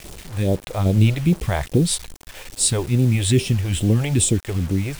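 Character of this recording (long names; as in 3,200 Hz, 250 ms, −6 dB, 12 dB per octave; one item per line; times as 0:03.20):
phaser sweep stages 2, 2.4 Hz, lowest notch 200–1,800 Hz
sample-and-hold tremolo
a quantiser's noise floor 8 bits, dither none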